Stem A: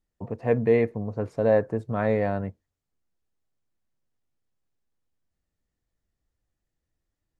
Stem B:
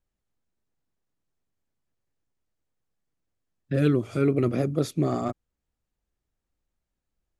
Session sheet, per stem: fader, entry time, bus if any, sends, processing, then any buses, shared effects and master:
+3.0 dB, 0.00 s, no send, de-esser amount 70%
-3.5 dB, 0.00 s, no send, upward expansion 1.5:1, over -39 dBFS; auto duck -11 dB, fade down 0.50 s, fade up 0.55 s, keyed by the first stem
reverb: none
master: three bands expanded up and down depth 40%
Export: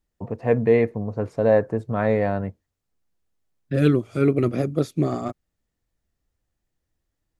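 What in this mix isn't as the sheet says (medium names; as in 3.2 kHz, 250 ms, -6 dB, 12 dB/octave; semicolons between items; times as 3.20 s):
stem B -3.5 dB -> +4.5 dB; master: missing three bands expanded up and down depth 40%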